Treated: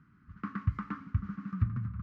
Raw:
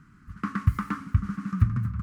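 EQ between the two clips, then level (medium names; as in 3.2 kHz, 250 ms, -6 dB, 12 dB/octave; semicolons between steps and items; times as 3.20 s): high-pass 56 Hz; distance through air 210 m; -7.0 dB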